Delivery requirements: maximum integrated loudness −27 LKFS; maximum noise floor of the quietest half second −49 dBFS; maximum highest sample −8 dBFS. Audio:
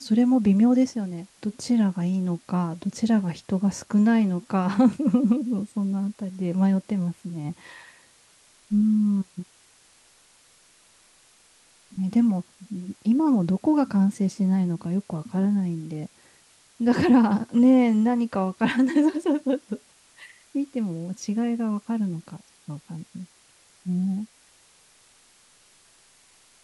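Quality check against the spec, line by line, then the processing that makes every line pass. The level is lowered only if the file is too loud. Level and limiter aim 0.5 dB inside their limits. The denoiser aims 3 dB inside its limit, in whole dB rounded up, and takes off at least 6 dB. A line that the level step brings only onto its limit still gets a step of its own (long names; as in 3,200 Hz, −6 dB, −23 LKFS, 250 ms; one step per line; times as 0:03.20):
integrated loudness −23.5 LKFS: out of spec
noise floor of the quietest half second −58 dBFS: in spec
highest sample −9.0 dBFS: in spec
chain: level −4 dB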